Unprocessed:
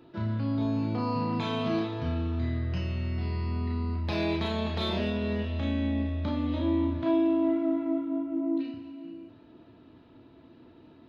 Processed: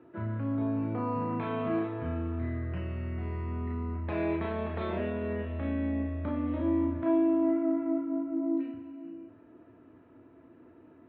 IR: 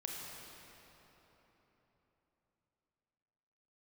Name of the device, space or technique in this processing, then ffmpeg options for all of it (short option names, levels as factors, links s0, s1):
bass cabinet: -af "highpass=88,equalizer=f=140:t=q:w=4:g=-8,equalizer=f=210:t=q:w=4:g=-6,equalizer=f=860:t=q:w=4:g=-4,lowpass=f=2100:w=0.5412,lowpass=f=2100:w=1.3066"